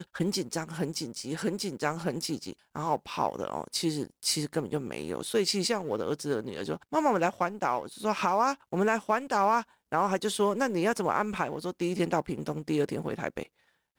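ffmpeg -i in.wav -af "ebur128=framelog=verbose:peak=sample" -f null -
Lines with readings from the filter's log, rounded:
Integrated loudness:
  I:         -30.1 LUFS
  Threshold: -40.2 LUFS
Loudness range:
  LRA:         4.6 LU
  Threshold: -49.8 LUFS
  LRA low:   -32.5 LUFS
  LRA high:  -28.0 LUFS
Sample peak:
  Peak:      -13.6 dBFS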